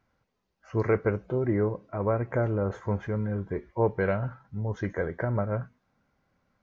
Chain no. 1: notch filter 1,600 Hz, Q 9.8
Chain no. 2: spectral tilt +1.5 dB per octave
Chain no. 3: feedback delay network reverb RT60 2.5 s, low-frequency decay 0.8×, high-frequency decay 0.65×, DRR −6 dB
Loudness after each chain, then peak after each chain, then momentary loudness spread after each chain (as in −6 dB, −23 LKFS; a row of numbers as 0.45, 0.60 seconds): −29.5, −31.5, −21.0 LKFS; −12.5, −13.0, −6.0 dBFS; 8, 9, 9 LU